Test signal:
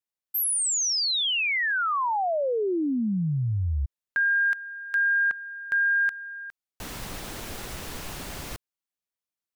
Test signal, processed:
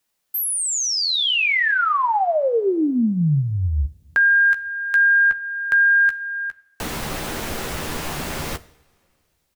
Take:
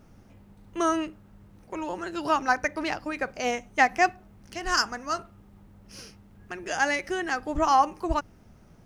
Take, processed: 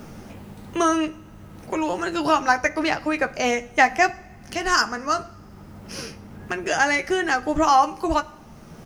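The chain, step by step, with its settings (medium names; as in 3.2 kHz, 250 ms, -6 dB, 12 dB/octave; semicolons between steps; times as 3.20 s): doubling 13 ms -8 dB; two-slope reverb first 0.57 s, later 2 s, from -18 dB, DRR 16 dB; three bands compressed up and down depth 40%; trim +5.5 dB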